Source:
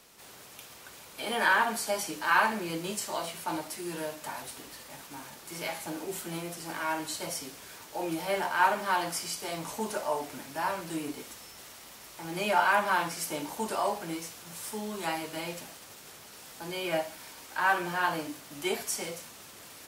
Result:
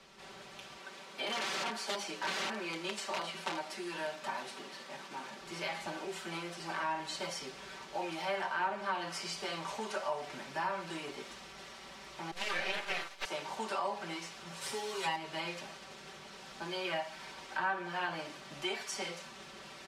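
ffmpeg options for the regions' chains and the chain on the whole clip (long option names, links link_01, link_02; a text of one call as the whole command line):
ffmpeg -i in.wav -filter_complex "[0:a]asettb=1/sr,asplit=3[link_01][link_02][link_03];[link_01]atrim=end=0.774[link_04];[link_02]atrim=start=0.77:end=5.4,asetpts=PTS-STARTPTS,afade=type=in:duration=0.004:curve=qsin,afade=type=out:start_time=4.626:duration=0.004:curve=qsin,aeval=exprs='(mod(16.8*val(0)+1,2)-1)/16.8':channel_layout=same,highpass=frequency=180:width=0.5412,highpass=frequency=180:width=1.3066[link_05];[link_03]atrim=start=5.396[link_06];[link_04][link_05]acrossfade=duration=0.004:curve1=hsin:curve2=qsin[link_07];[link_07][link_06]acrossfade=duration=0.004:curve1=qsin:curve2=hsin,asettb=1/sr,asplit=3[link_08][link_09][link_10];[link_08]atrim=end=12.314[link_11];[link_09]atrim=start=12.31:end=13.25,asetpts=PTS-STARTPTS,afade=type=in:duration=0.004:curve=qsin,afade=type=out:start_time=0.936:duration=0.004:curve=qsin,agate=range=-33dB:threshold=-30dB:ratio=3:release=100:detection=peak,highshelf=frequency=4100:gain=11.5,aeval=exprs='abs(val(0))':channel_layout=same[link_12];[link_10]atrim=start=13.246[link_13];[link_11][link_12]acrossfade=duration=0.004:curve1=hsin:curve2=qsin[link_14];[link_14][link_13]acrossfade=duration=0.004:curve1=qsin:curve2=hsin,asettb=1/sr,asplit=3[link_15][link_16][link_17];[link_15]atrim=end=14.614[link_18];[link_16]atrim=start=14.61:end=15.16,asetpts=PTS-STARTPTS,afade=type=in:duration=0.004:curve=qsin,afade=type=out:start_time=0.546:duration=0.004:curve=qsin,highshelf=frequency=4900:gain=7.5,aecho=1:1:7.3:0.87,atrim=end_sample=24255[link_19];[link_17]atrim=start=15.156[link_20];[link_18][link_19]acrossfade=duration=0.004:curve1=hsin:curve2=qsin[link_21];[link_21][link_20]acrossfade=duration=0.004:curve1=qsin:curve2=hsin,lowpass=4400,aecho=1:1:5.2:0.74,acrossover=split=370|740[link_22][link_23][link_24];[link_22]acompressor=threshold=-50dB:ratio=4[link_25];[link_23]acompressor=threshold=-45dB:ratio=4[link_26];[link_24]acompressor=threshold=-35dB:ratio=4[link_27];[link_25][link_26][link_27]amix=inputs=3:normalize=0" out.wav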